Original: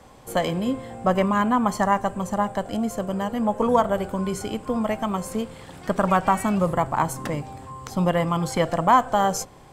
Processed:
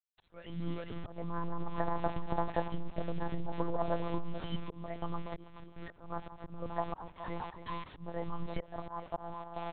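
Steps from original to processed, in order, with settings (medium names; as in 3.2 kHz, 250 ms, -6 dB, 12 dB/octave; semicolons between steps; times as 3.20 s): tape start-up on the opening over 0.49 s; spectral noise reduction 22 dB; low-pass that closes with the level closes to 1.1 kHz, closed at -17.5 dBFS; peaking EQ 190 Hz +2 dB 1.8 oct; in parallel at -2.5 dB: compression 6:1, threshold -29 dBFS, peak gain reduction 15 dB; on the sum: delay 423 ms -11.5 dB; bit crusher 6-bit; on a send: feedback delay 272 ms, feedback 26%, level -16 dB; on the sum: slow attack 793 ms; monotone LPC vocoder at 8 kHz 170 Hz; transformer saturation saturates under 110 Hz; trim -5 dB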